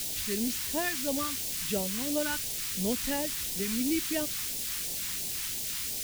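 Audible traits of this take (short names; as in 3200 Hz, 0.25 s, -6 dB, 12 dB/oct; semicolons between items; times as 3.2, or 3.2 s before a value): a quantiser's noise floor 6-bit, dither triangular; phasing stages 2, 2.9 Hz, lowest notch 550–1300 Hz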